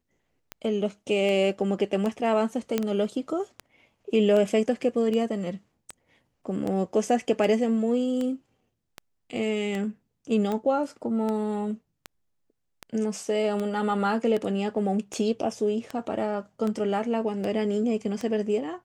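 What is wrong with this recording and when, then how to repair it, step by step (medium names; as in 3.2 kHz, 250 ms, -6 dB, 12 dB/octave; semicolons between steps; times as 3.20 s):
tick 78 rpm -18 dBFS
2.78 s: pop -11 dBFS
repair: de-click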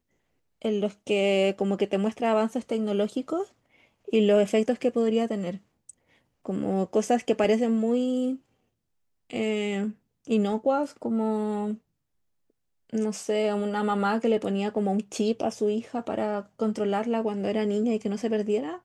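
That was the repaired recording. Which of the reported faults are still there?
nothing left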